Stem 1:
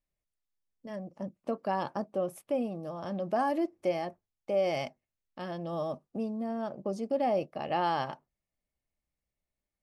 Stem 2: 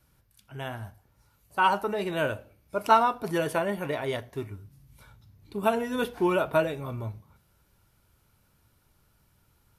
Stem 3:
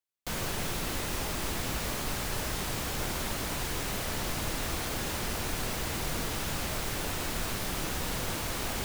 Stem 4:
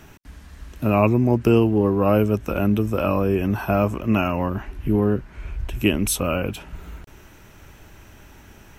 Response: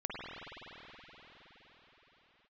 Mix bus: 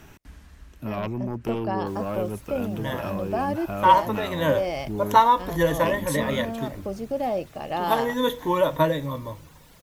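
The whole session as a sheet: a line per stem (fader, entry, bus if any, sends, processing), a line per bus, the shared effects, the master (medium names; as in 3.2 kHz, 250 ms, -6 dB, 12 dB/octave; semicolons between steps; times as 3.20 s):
+2.0 dB, 0.00 s, no send, none
+2.0 dB, 2.25 s, no send, rippled EQ curve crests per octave 1.1, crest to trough 15 dB
-17.0 dB, 1.60 s, no send, reverb removal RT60 1.5 s
-12.0 dB, 0.00 s, no send, sine folder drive 6 dB, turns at -3 dBFS; auto duck -8 dB, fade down 0.65 s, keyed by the first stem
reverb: none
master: none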